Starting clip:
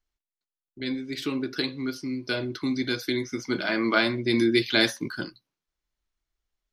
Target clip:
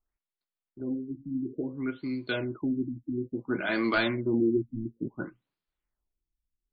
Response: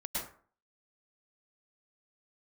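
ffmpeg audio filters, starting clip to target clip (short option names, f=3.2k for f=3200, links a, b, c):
-af "aeval=exprs='0.531*(cos(1*acos(clip(val(0)/0.531,-1,1)))-cos(1*PI/2))+0.266*(cos(2*acos(clip(val(0)/0.531,-1,1)))-cos(2*PI/2))+0.0376*(cos(4*acos(clip(val(0)/0.531,-1,1)))-cos(4*PI/2))+0.0944*(cos(5*acos(clip(val(0)/0.531,-1,1)))-cos(5*PI/2))+0.0119*(cos(8*acos(clip(val(0)/0.531,-1,1)))-cos(8*PI/2))':c=same,afftfilt=real='re*lt(b*sr/1024,300*pow(5200/300,0.5+0.5*sin(2*PI*0.58*pts/sr)))':imag='im*lt(b*sr/1024,300*pow(5200/300,0.5+0.5*sin(2*PI*0.58*pts/sr)))':win_size=1024:overlap=0.75,volume=-7dB"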